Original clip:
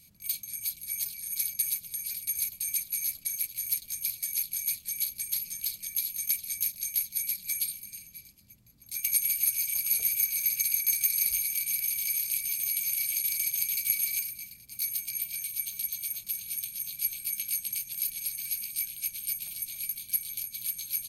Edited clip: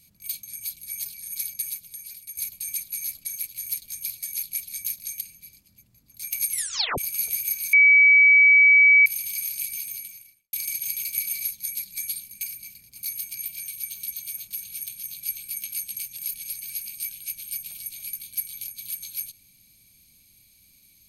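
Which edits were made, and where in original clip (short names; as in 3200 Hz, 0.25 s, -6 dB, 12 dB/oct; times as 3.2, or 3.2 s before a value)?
1.4–2.37 fade out, to -9 dB
4.55–6.31 cut
6.97–7.93 move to 14.17
9.24 tape stop 0.46 s
10.45–11.78 bleep 2280 Hz -11 dBFS
12.43–13.25 studio fade out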